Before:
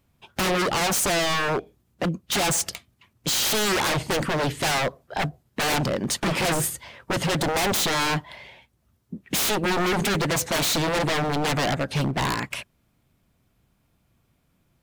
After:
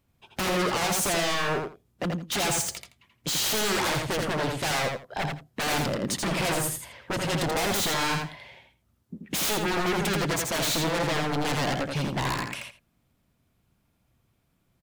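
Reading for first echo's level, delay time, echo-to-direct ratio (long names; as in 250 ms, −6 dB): −4.0 dB, 83 ms, −4.0 dB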